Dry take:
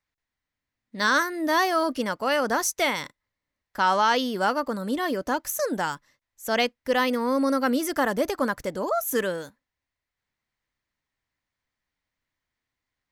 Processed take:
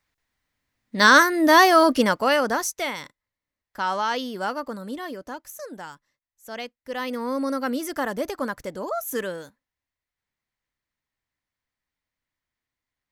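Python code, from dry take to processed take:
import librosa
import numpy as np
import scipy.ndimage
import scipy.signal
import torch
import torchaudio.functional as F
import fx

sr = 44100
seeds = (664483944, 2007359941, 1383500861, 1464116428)

y = fx.gain(x, sr, db=fx.line((2.05, 8.0), (2.82, -4.0), (4.73, -4.0), (5.48, -11.0), (6.8, -11.0), (7.2, -3.0)))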